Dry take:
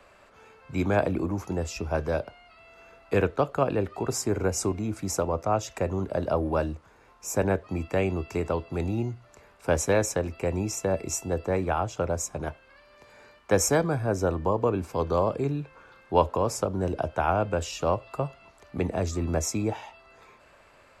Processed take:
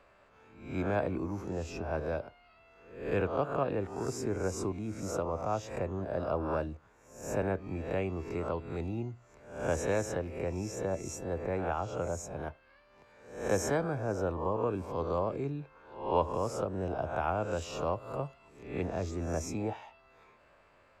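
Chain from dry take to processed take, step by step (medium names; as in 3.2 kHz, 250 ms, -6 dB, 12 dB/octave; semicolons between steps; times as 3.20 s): reverse spectral sustain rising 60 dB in 0.58 s; treble shelf 5 kHz -11 dB, from 17.16 s -6 dB, from 18.86 s -11 dB; trim -8 dB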